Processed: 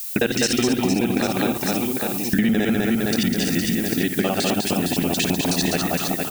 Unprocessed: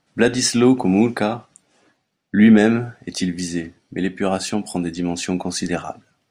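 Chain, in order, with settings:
reversed piece by piece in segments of 53 ms
parametric band 3,100 Hz +8 dB 0.85 octaves
background noise violet −34 dBFS
on a send: reverse bouncing-ball delay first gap 200 ms, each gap 1.3×, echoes 5
on the sum: downward compressor 6 to 1, threshold −20 dBFS, peak gain reduction 12 dB
level +3 dB

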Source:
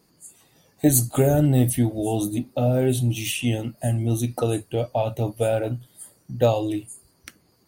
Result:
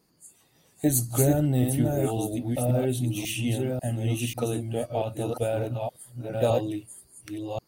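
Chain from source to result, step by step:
delay that plays each chunk backwards 542 ms, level −3 dB
level −5.5 dB

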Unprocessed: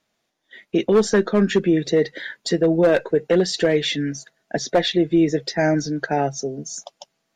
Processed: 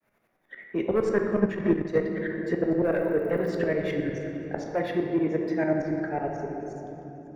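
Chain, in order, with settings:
fade-out on the ending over 1.91 s
feedback echo with a high-pass in the loop 246 ms, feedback 57%, level −23 dB
in parallel at −10 dB: hard clipping −19.5 dBFS, distortion −7 dB
on the sum: shaped tremolo saw up 11 Hz, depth 100%
0:04.71–0:05.80: high-pass filter 120 Hz
on a send at −1.5 dB: convolution reverb RT60 2.5 s, pre-delay 7 ms
0:01.39–0:01.98: on the sum: transient designer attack +10 dB, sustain −11 dB
0:02.86–0:03.51: surface crackle 67 per second → 230 per second −32 dBFS
flat-topped bell 5,000 Hz −16 dB
multiband upward and downward compressor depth 40%
level −6.5 dB

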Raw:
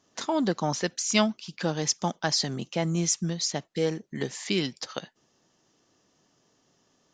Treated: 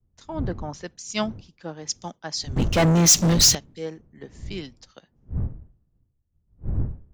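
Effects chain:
wind on the microphone 130 Hz −31 dBFS
0:02.56–0:03.55: leveller curve on the samples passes 5
multiband upward and downward expander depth 100%
level −5.5 dB

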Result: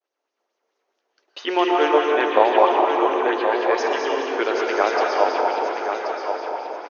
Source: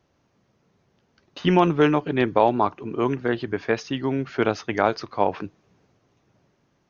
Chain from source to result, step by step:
downward expander −58 dBFS
inverse Chebyshev high-pass filter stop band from 180 Hz, stop band 40 dB
repeating echo 1,079 ms, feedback 27%, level −7.5 dB
dense smooth reverb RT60 3.6 s, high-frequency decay 0.75×, pre-delay 105 ms, DRR −2 dB
auto-filter bell 4.6 Hz 580–6,000 Hz +6 dB
level −1 dB

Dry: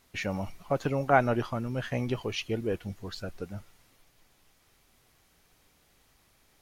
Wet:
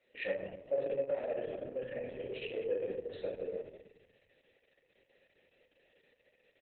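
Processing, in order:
0:01.55–0:02.00: high shelf with overshoot 4,800 Hz +10 dB, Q 3
notch filter 1,500 Hz, Q 6.7
soft clipping −14.5 dBFS, distortion −19 dB
thirty-one-band graphic EQ 125 Hz +4 dB, 400 Hz +9 dB, 6,300 Hz +8 dB
single-tap delay 98 ms −16 dB
convolution reverb RT60 0.85 s, pre-delay 4 ms, DRR −6 dB
brickwall limiter −16.5 dBFS, peak gain reduction 10.5 dB
0:02.50–0:03.29: high-pass filter 43 Hz 12 dB per octave
speech leveller within 3 dB 2 s
formant filter e
Opus 6 kbit/s 48,000 Hz

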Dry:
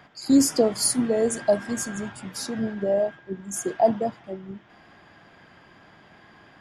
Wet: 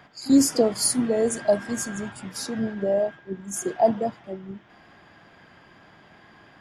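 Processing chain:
echo ahead of the sound 36 ms −20.5 dB

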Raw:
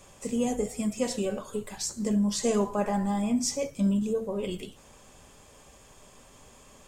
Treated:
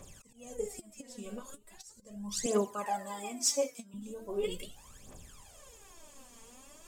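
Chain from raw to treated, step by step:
volume swells 622 ms
high-shelf EQ 7,500 Hz +8 dB
phase shifter 0.39 Hz, delay 4.5 ms, feedback 75%
0:02.46–0:03.94: Bessel high-pass filter 420 Hz, order 2
level −6.5 dB

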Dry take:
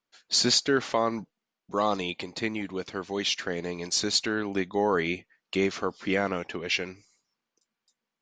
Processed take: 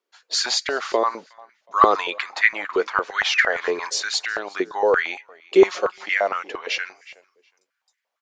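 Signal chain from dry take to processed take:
0:01.81–0:03.90: parametric band 1,400 Hz +13 dB 1.4 octaves
0:03.27–0:03.57: sound drawn into the spectrogram fall 1,400–3,300 Hz −34 dBFS
in parallel at −3 dB: brickwall limiter −16.5 dBFS, peak gain reduction 11 dB
0:05.55–0:06.06: on the sum: comb filter 5.5 ms, depth 94%
repeating echo 366 ms, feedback 21%, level −23 dB
high-pass on a step sequencer 8.7 Hz 400–1,900 Hz
level −3 dB

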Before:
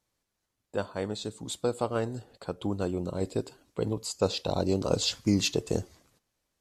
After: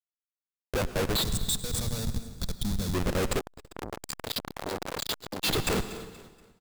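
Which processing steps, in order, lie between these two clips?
parametric band 6,000 Hz −10 dB 0.5 octaves
upward compression, threshold −40 dBFS
spectral tilt +4 dB per octave
spectral peaks only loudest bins 64
mains-hum notches 50/100 Hz
comparator with hysteresis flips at −38.5 dBFS
repeating echo 238 ms, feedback 38%, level −17 dB
0:01.22–0:02.94: gain on a spectral selection 240–3,300 Hz −13 dB
convolution reverb RT60 1.4 s, pre-delay 88 ms, DRR 12 dB
0:03.39–0:05.44: saturating transformer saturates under 1,200 Hz
level +8.5 dB

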